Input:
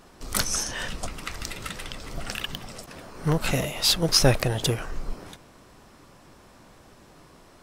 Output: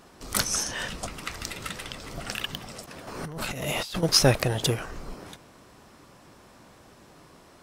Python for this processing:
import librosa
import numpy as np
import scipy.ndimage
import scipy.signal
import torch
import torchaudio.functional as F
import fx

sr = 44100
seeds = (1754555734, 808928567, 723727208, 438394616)

y = fx.highpass(x, sr, hz=64.0, slope=6)
y = fx.over_compress(y, sr, threshold_db=-33.0, ratio=-1.0, at=(3.07, 4.03))